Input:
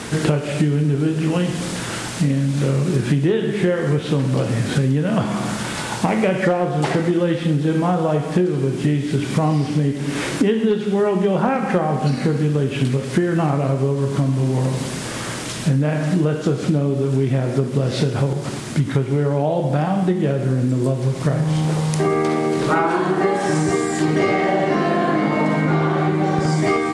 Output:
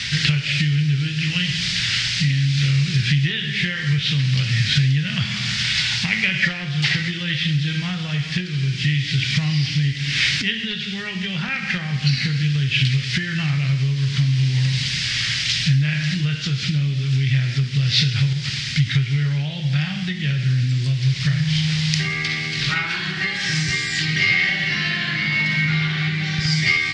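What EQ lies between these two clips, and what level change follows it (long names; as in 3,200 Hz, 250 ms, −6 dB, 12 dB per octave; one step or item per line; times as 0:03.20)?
drawn EQ curve 140 Hz 0 dB, 290 Hz −22 dB, 570 Hz −26 dB, 1,100 Hz −17 dB, 1,900 Hz +7 dB, 2,900 Hz +10 dB, 5,000 Hz +11 dB, 12,000 Hz −25 dB
+2.0 dB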